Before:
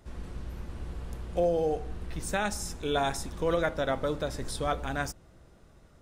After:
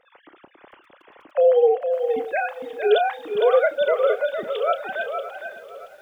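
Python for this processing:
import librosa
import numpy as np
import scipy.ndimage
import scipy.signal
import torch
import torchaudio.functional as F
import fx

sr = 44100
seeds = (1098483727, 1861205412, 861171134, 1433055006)

y = fx.sine_speech(x, sr)
y = fx.high_shelf(y, sr, hz=2500.0, db=5.5)
y = fx.doubler(y, sr, ms=31.0, db=-13.0)
y = y + 10.0 ** (-7.0 / 20.0) * np.pad(y, (int(459 * sr / 1000.0), 0))[:len(y)]
y = fx.echo_crushed(y, sr, ms=567, feedback_pct=55, bits=9, wet_db=-15.0)
y = y * 10.0 ** (7.5 / 20.0)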